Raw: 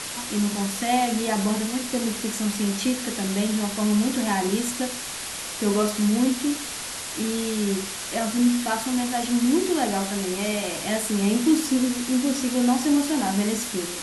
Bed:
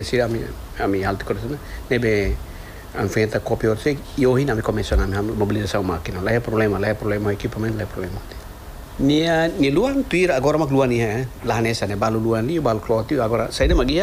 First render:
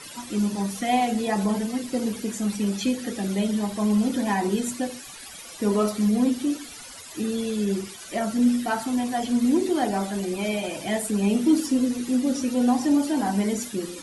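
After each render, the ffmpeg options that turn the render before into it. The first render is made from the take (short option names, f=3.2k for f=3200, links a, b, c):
-af "afftdn=nr=15:nf=-33"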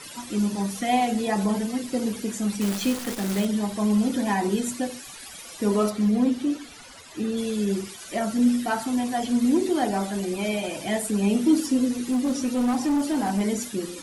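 -filter_complex "[0:a]asettb=1/sr,asplit=3[a][b][c];[a]atrim=end=2.614[d];[b]atrim=start=2.61:end=3.45,asetpts=PTS-STARTPTS,afade=t=in:d=0.004:c=qsin,afade=t=out:st=0.836:d=0.004:c=qsin,acrusher=bits=6:dc=4:mix=0:aa=0.000001[e];[c]atrim=start=3.446[f];[d][e]acrossfade=d=0.004:c1=hsin:c2=qsin[g];[g][f]acrossfade=d=0.004:c1=qsin:c2=hsin,asettb=1/sr,asplit=3[h][i][j];[h]atrim=end=5.904[k];[i]atrim=start=5.9:end=7.37,asetpts=PTS-STARTPTS,afade=t=in:d=0.004:c=qsin,afade=t=out:st=1.466:d=0.004:c=qsin,lowpass=f=3.7k:p=1[l];[j]atrim=start=7.366[m];[k][l]acrossfade=d=0.004:c1=hsin:c2=qsin[n];[n][m]acrossfade=d=0.004:c1=qsin:c2=hsin,asettb=1/sr,asplit=3[o][p][q];[o]atrim=end=12.014[r];[p]atrim=start=12.01:end=13.41,asetpts=PTS-STARTPTS,afade=t=in:d=0.004:c=qsin,afade=t=out:st=1.396:d=0.004:c=qsin,volume=19.5dB,asoftclip=hard,volume=-19.5dB[s];[q]atrim=start=13.406[t];[r][s]acrossfade=d=0.004:c1=hsin:c2=qsin[u];[u][t]acrossfade=d=0.004:c1=qsin:c2=hsin"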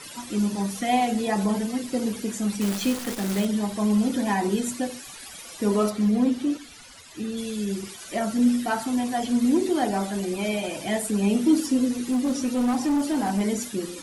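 -filter_complex "[0:a]asettb=1/sr,asplit=3[a][b][c];[a]atrim=end=6.574[d];[b]atrim=start=6.57:end=7.83,asetpts=PTS-STARTPTS,afade=t=in:d=0.004:c=qsin,afade=t=out:st=1.256:d=0.004:c=qsin,equalizer=f=550:w=0.41:g=-5.5[e];[c]atrim=start=7.826[f];[d][e]acrossfade=d=0.004:c1=hsin:c2=qsin[g];[g][f]acrossfade=d=0.004:c1=qsin:c2=hsin"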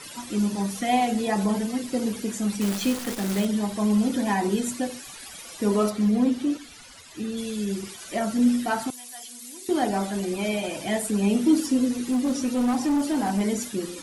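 -filter_complex "[0:a]asettb=1/sr,asplit=3[a][b][c];[a]atrim=end=8.904[d];[b]atrim=start=8.9:end=9.69,asetpts=PTS-STARTPTS,afade=t=in:d=0.004:c=qsin,afade=t=out:st=0.786:d=0.004:c=qsin,aderivative[e];[c]atrim=start=9.686[f];[d][e]acrossfade=d=0.004:c1=hsin:c2=qsin[g];[g][f]acrossfade=d=0.004:c1=qsin:c2=hsin"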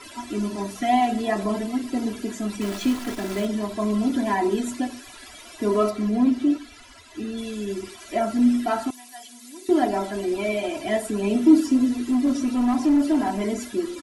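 -af "highshelf=f=4.5k:g=-10,aecho=1:1:3:0.88"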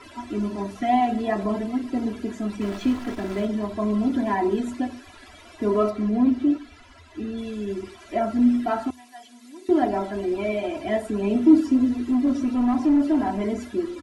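-af "lowpass=f=2.1k:p=1,equalizer=f=81:w=4.3:g=10.5"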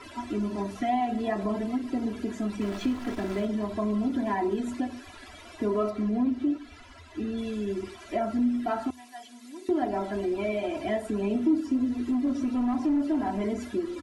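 -af "acompressor=threshold=-28dB:ratio=2"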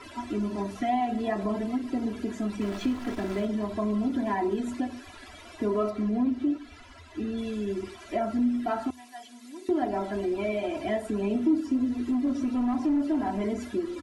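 -af anull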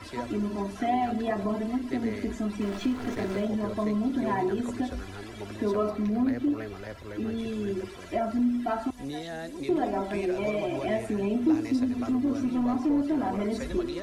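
-filter_complex "[1:a]volume=-19.5dB[a];[0:a][a]amix=inputs=2:normalize=0"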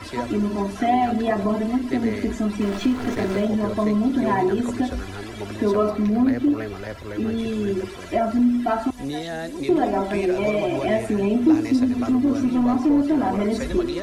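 -af "volume=7dB"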